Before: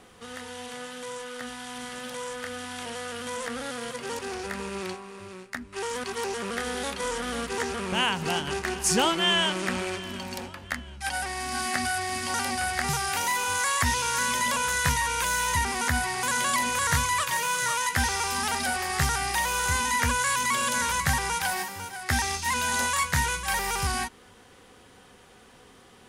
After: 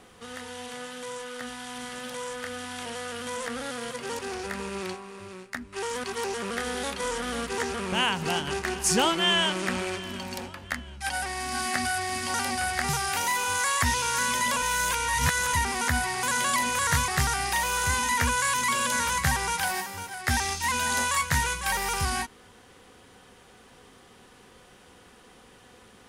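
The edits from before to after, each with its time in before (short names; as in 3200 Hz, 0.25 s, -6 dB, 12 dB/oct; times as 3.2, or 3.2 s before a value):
14.62–15.53 reverse
17.08–18.9 cut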